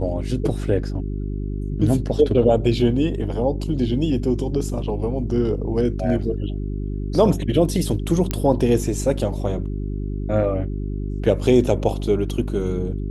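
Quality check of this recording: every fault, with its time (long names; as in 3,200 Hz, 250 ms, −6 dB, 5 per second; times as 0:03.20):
mains hum 50 Hz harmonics 8 −26 dBFS
0:08.31: click −8 dBFS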